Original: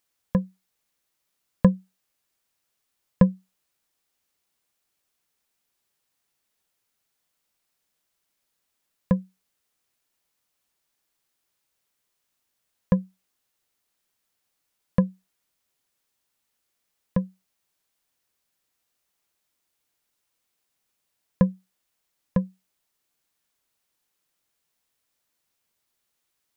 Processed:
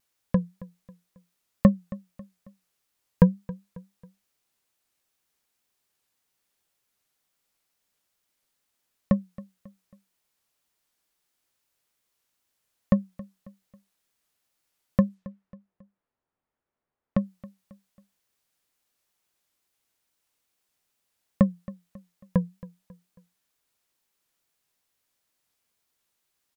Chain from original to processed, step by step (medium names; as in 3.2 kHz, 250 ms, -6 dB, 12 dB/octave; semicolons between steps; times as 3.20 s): 15.09–17.26 s: level-controlled noise filter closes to 1.1 kHz, open at -45.5 dBFS; wow and flutter 120 cents; feedback delay 272 ms, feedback 42%, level -19.5 dB